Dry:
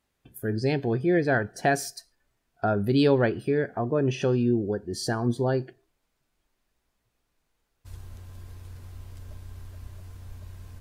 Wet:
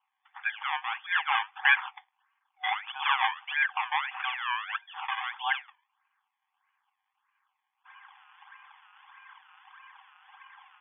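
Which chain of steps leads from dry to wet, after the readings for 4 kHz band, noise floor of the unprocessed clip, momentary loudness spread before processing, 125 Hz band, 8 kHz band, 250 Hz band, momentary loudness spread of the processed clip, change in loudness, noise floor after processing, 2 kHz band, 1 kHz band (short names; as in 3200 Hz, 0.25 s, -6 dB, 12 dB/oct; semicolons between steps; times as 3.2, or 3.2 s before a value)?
+5.0 dB, -77 dBFS, 22 LU, under -40 dB, under -40 dB, under -40 dB, 10 LU, -3.5 dB, -82 dBFS, +6.0 dB, +3.0 dB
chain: small resonant body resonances 1100/1600 Hz, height 17 dB; decimation with a swept rate 22×, swing 100% 1.6 Hz; FFT band-pass 750–3500 Hz; gain +1.5 dB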